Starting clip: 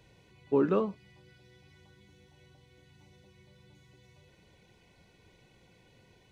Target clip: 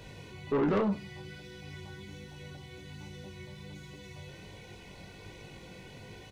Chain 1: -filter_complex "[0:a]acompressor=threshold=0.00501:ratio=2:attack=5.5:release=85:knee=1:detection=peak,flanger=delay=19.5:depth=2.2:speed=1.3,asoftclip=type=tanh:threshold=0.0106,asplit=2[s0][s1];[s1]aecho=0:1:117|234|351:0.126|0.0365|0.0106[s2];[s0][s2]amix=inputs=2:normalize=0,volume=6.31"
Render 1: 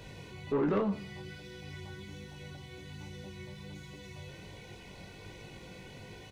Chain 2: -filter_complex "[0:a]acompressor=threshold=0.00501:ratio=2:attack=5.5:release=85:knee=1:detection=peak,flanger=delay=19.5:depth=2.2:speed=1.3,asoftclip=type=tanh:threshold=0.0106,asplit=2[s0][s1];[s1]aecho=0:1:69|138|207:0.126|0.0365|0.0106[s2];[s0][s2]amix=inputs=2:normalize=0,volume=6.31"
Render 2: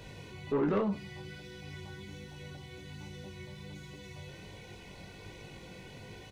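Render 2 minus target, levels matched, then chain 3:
compression: peak gain reduction +4 dB
-filter_complex "[0:a]acompressor=threshold=0.0126:ratio=2:attack=5.5:release=85:knee=1:detection=peak,flanger=delay=19.5:depth=2.2:speed=1.3,asoftclip=type=tanh:threshold=0.0106,asplit=2[s0][s1];[s1]aecho=0:1:69|138|207:0.126|0.0365|0.0106[s2];[s0][s2]amix=inputs=2:normalize=0,volume=6.31"

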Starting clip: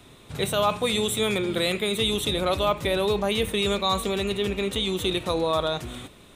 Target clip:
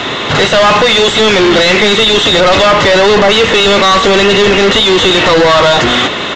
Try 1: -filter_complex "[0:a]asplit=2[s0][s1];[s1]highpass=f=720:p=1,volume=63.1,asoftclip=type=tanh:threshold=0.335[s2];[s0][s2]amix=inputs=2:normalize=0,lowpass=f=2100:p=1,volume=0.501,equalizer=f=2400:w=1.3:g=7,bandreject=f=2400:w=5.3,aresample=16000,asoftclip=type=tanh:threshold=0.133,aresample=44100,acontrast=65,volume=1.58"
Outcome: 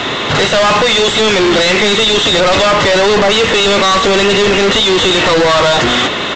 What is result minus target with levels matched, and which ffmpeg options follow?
saturation: distortion +13 dB
-filter_complex "[0:a]asplit=2[s0][s1];[s1]highpass=f=720:p=1,volume=63.1,asoftclip=type=tanh:threshold=0.335[s2];[s0][s2]amix=inputs=2:normalize=0,lowpass=f=2100:p=1,volume=0.501,equalizer=f=2400:w=1.3:g=7,bandreject=f=2400:w=5.3,aresample=16000,asoftclip=type=tanh:threshold=0.376,aresample=44100,acontrast=65,volume=1.58"

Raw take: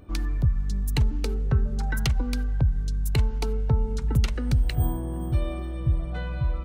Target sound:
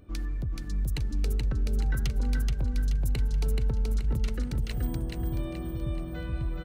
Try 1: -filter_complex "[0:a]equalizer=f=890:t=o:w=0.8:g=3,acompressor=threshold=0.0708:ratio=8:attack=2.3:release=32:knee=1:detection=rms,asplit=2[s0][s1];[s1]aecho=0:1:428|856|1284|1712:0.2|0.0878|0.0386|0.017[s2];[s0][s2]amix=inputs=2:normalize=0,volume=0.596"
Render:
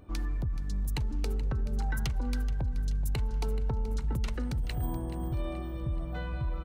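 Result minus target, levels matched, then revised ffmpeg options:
echo-to-direct -11 dB; 1 kHz band +7.0 dB
-filter_complex "[0:a]equalizer=f=890:t=o:w=0.8:g=-6,acompressor=threshold=0.0708:ratio=8:attack=2.3:release=32:knee=1:detection=rms,asplit=2[s0][s1];[s1]aecho=0:1:428|856|1284|1712|2140|2568:0.708|0.311|0.137|0.0603|0.0265|0.0117[s2];[s0][s2]amix=inputs=2:normalize=0,volume=0.596"

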